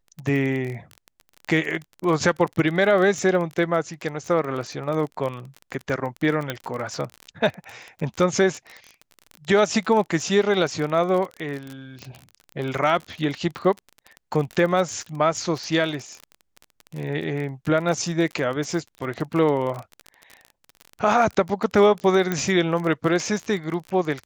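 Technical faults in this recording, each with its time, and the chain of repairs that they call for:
crackle 32 per s -28 dBFS
6.50 s: pop -11 dBFS
12.02 s: pop -25 dBFS
22.32 s: pop -10 dBFS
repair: de-click

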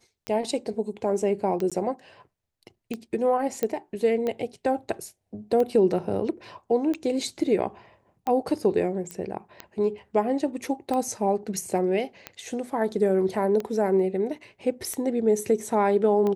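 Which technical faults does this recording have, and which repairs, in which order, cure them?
tick 45 rpm -17 dBFS
1.70–1.72 s: dropout 16 ms
3.63 s: pop -12 dBFS
9.11 s: pop -18 dBFS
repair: de-click; interpolate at 1.70 s, 16 ms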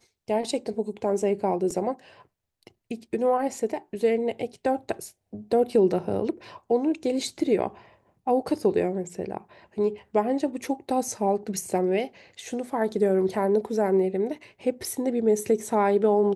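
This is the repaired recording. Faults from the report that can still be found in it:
3.63 s: pop

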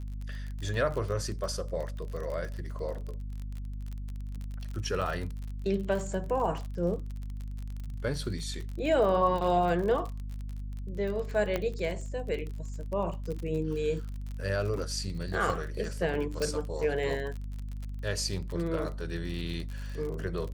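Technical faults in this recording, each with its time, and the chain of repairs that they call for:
crackle 39 per s -35 dBFS
hum 50 Hz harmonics 5 -37 dBFS
5.01–5.02 s: dropout 6.7 ms
11.56 s: pop -16 dBFS
16.42 s: pop -18 dBFS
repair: de-click; de-hum 50 Hz, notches 5; interpolate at 5.01 s, 6.7 ms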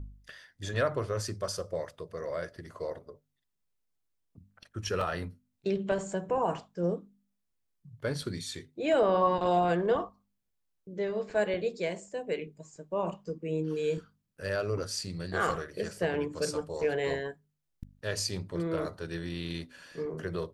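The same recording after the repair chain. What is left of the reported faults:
16.42 s: pop

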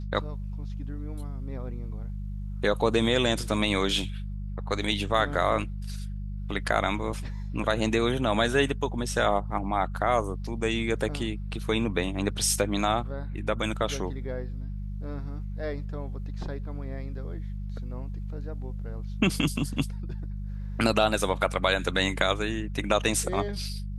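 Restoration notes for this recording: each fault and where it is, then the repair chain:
hum 50 Hz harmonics 4 -34 dBFS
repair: de-hum 50 Hz, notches 4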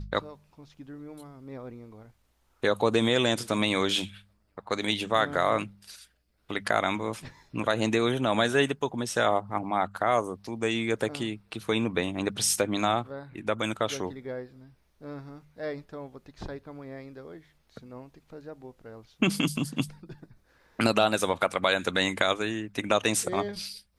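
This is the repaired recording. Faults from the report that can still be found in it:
nothing left

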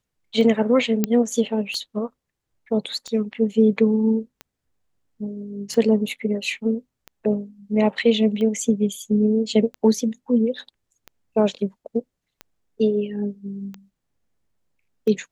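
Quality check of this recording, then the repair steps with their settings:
tick 45 rpm -20 dBFS
1.04 s: pop -6 dBFS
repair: de-click

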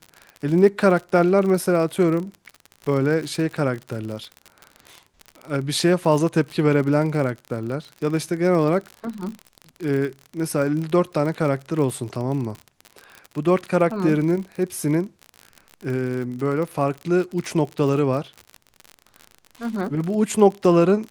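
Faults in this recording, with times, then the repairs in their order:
crackle 50 per s -28 dBFS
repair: de-click

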